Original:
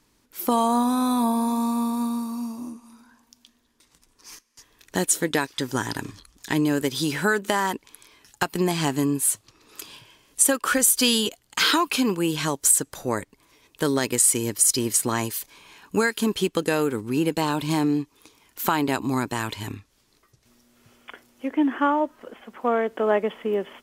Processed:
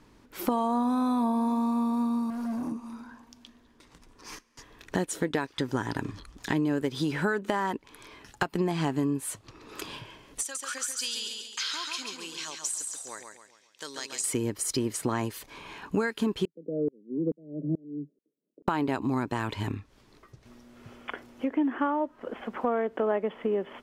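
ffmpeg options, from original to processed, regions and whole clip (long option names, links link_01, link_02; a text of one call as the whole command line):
ffmpeg -i in.wav -filter_complex "[0:a]asettb=1/sr,asplit=3[link_01][link_02][link_03];[link_01]atrim=end=2.304[link_04];[link_02]atrim=start=2.3:end=2.72,asetpts=PTS-STARTPTS,afade=type=in:duration=0.004:curve=qsin,afade=type=out:start_time=0.416:duration=0.004:curve=qsin,bandreject=frequency=60:width_type=h:width=6,bandreject=frequency=120:width_type=h:width=6,bandreject=frequency=180:width_type=h:width=6,bandreject=frequency=240:width_type=h:width=6,bandreject=frequency=300:width_type=h:width=6,bandreject=frequency=360:width_type=h:width=6,bandreject=frequency=420:width_type=h:width=6,volume=35.5dB,asoftclip=hard,volume=-35.5dB,equalizer=frequency=12000:width_type=o:width=0.77:gain=3.5[link_05];[link_03]atrim=start=2.716[link_06];[link_04][link_05]acrossfade=duration=0.004:curve1=hsin:curve2=qsin[link_07];[link_07][link_06]acrossfade=duration=0.004:curve1=qsin:curve2=hsin,asettb=1/sr,asplit=3[link_08][link_09][link_10];[link_08]atrim=end=10.414[link_11];[link_09]atrim=start=10.41:end=14.24,asetpts=PTS-STARTPTS,afade=type=in:duration=0.004:curve=qsin,afade=type=out:start_time=3.826:duration=0.004:curve=qsin,bandpass=frequency=6100:width_type=q:width=2,asoftclip=type=hard:threshold=-14dB,aecho=1:1:137|274|411|548|685:0.531|0.228|0.0982|0.0422|0.0181,atrim=end_sample=168903[link_12];[link_10]atrim=start=14.236[link_13];[link_11][link_12]acrossfade=duration=0.004:curve1=hsin:curve2=qsin[link_14];[link_14][link_13]acrossfade=duration=0.004:curve1=qsin:curve2=hsin,asettb=1/sr,asplit=3[link_15][link_16][link_17];[link_15]atrim=end=16.454[link_18];[link_16]atrim=start=16.45:end=18.68,asetpts=PTS-STARTPTS,afade=type=in:duration=0.004:curve=qsin,afade=type=out:start_time=2.226:duration=0.004:curve=qsin,agate=range=-33dB:threshold=-50dB:ratio=3:release=100:detection=peak,asuperpass=centerf=300:order=20:qfactor=0.64,aeval=exprs='val(0)*pow(10,-34*if(lt(mod(-2.3*n/s,1),2*abs(-2.3)/1000),1-mod(-2.3*n/s,1)/(2*abs(-2.3)/1000),(mod(-2.3*n/s,1)-2*abs(-2.3)/1000)/(1-2*abs(-2.3)/1000))/20)':channel_layout=same[link_19];[link_17]atrim=start=18.676[link_20];[link_18][link_19]acrossfade=duration=0.004:curve1=hsin:curve2=qsin[link_21];[link_21][link_20]acrossfade=duration=0.004:curve1=qsin:curve2=hsin,lowpass=frequency=1600:poles=1,acompressor=threshold=-40dB:ratio=2.5,volume=9dB" out.wav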